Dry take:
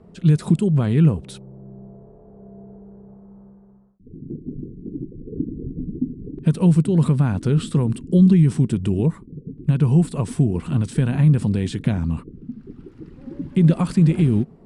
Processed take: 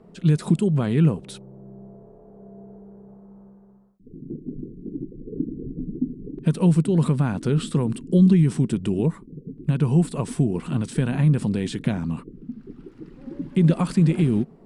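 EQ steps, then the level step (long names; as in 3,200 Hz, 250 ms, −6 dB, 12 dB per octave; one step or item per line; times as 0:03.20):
parametric band 76 Hz −13.5 dB 1.1 octaves
0.0 dB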